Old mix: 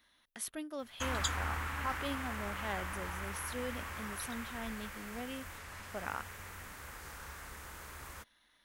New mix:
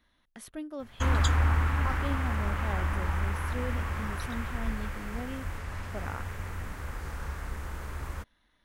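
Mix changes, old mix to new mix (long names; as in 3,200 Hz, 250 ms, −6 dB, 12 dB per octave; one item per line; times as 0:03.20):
background +6.5 dB
master: add spectral tilt −2.5 dB per octave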